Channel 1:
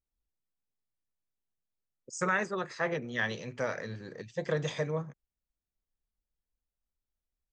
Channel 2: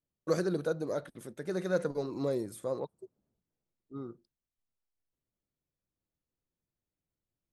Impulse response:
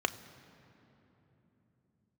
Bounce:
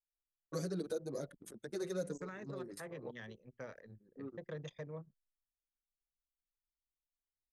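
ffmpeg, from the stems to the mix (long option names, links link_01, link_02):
-filter_complex "[0:a]volume=-12.5dB,asplit=2[link_01][link_02];[1:a]highshelf=frequency=4800:gain=10.5,asplit=2[link_03][link_04];[link_04]adelay=6.1,afreqshift=1.4[link_05];[link_03][link_05]amix=inputs=2:normalize=1,adelay=250,volume=-1dB[link_06];[link_02]apad=whole_len=343248[link_07];[link_06][link_07]sidechaincompress=threshold=-54dB:ratio=5:attack=8.9:release=107[link_08];[link_01][link_08]amix=inputs=2:normalize=0,anlmdn=0.0158,equalizer=frequency=4200:width=0.42:gain=5.5,acrossover=split=520|6500[link_09][link_10][link_11];[link_09]acompressor=threshold=-36dB:ratio=4[link_12];[link_10]acompressor=threshold=-51dB:ratio=4[link_13];[link_11]acompressor=threshold=-57dB:ratio=4[link_14];[link_12][link_13][link_14]amix=inputs=3:normalize=0"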